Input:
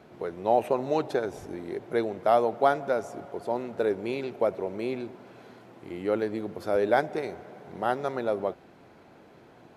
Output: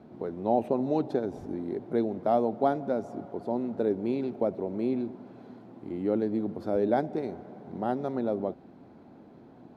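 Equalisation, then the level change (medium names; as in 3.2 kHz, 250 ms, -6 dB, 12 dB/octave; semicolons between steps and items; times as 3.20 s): graphic EQ 250/500/4000 Hz +7/+4/+7 dB; dynamic bell 1.2 kHz, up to -4 dB, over -31 dBFS, Q 0.92; FFT filter 250 Hz 0 dB, 490 Hz -8 dB, 800 Hz -3 dB, 2.9 kHz -15 dB; 0.0 dB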